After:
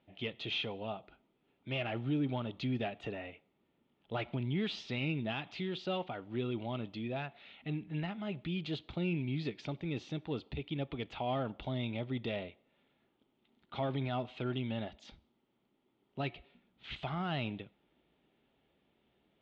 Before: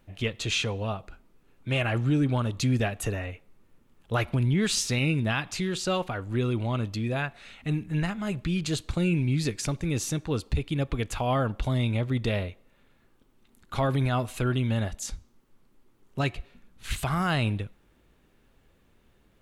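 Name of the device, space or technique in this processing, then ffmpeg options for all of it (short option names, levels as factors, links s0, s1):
overdrive pedal into a guitar cabinet: -filter_complex "[0:a]asplit=2[s0][s1];[s1]highpass=f=720:p=1,volume=3.16,asoftclip=type=tanh:threshold=0.168[s2];[s0][s2]amix=inputs=2:normalize=0,lowpass=f=1100:p=1,volume=0.501,highpass=83,equalizer=f=97:t=q:w=4:g=-10,equalizer=f=500:t=q:w=4:g=-5,equalizer=f=1100:t=q:w=4:g=-9,equalizer=f=1600:t=q:w=4:g=-9,equalizer=f=3300:t=q:w=4:g=7,lowpass=f=4300:w=0.5412,lowpass=f=4300:w=1.3066,volume=0.531"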